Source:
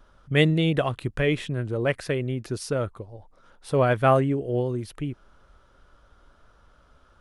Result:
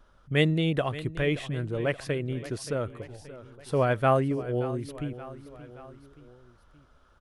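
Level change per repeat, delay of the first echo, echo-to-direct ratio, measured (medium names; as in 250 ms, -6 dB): -5.0 dB, 576 ms, -14.0 dB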